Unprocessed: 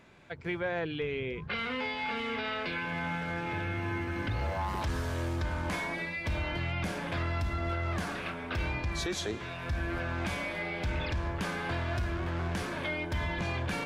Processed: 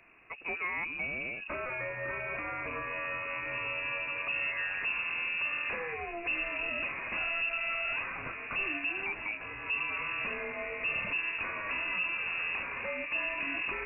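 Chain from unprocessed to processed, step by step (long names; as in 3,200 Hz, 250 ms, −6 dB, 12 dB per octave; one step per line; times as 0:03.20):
variable-slope delta modulation 32 kbit/s
voice inversion scrambler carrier 2,700 Hz
level −2 dB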